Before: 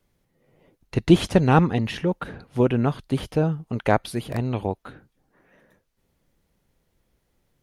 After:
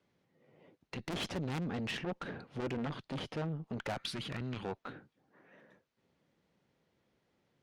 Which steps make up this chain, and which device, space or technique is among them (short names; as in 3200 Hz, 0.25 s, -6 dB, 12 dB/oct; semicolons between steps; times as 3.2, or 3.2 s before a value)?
valve radio (BPF 140–4600 Hz; tube stage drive 30 dB, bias 0.35; core saturation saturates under 270 Hz); 3.97–4.65 EQ curve 200 Hz 0 dB, 700 Hz -8 dB, 1400 Hz +5 dB; gain -1.5 dB